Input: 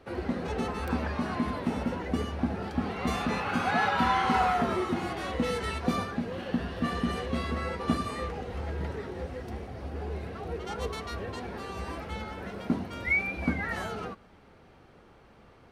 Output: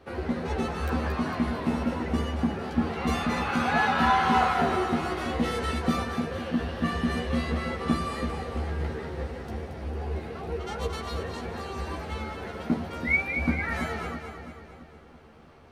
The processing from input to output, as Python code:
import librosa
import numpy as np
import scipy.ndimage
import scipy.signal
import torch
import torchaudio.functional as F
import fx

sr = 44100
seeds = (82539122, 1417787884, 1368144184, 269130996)

y = fx.doubler(x, sr, ms=13.0, db=-4)
y = fx.echo_split(y, sr, split_hz=680.0, low_ms=332, high_ms=226, feedback_pct=52, wet_db=-7.5)